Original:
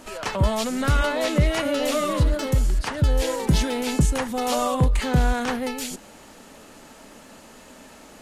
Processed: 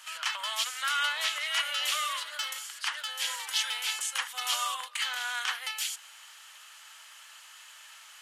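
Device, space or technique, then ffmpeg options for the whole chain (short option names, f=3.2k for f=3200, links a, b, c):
headphones lying on a table: -af "highpass=f=1.2k:w=0.5412,highpass=f=1.2k:w=1.3066,equalizer=f=3.1k:t=o:w=0.24:g=8,volume=-1dB"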